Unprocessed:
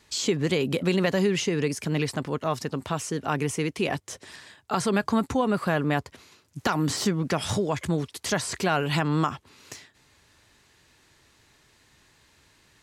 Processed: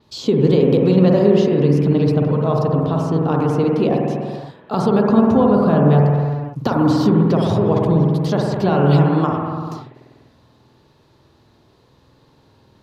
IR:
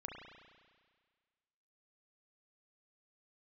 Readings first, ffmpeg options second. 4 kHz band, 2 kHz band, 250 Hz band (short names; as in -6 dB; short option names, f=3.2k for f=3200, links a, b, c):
-1.5 dB, -2.5 dB, +12.0 dB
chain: -filter_complex "[0:a]equalizer=f=125:t=o:w=1:g=11,equalizer=f=250:t=o:w=1:g=6,equalizer=f=500:t=o:w=1:g=7,equalizer=f=1k:t=o:w=1:g=5,equalizer=f=2k:t=o:w=1:g=-10,equalizer=f=4k:t=o:w=1:g=7,equalizer=f=8k:t=o:w=1:g=-12[a];[1:a]atrim=start_sample=2205,afade=t=out:st=0.43:d=0.01,atrim=end_sample=19404,asetrate=29988,aresample=44100[b];[a][b]afir=irnorm=-1:irlink=0,adynamicequalizer=threshold=0.00562:dfrequency=5900:dqfactor=0.7:tfrequency=5900:tqfactor=0.7:attack=5:release=100:ratio=0.375:range=2.5:mode=cutabove:tftype=highshelf,volume=2.5dB"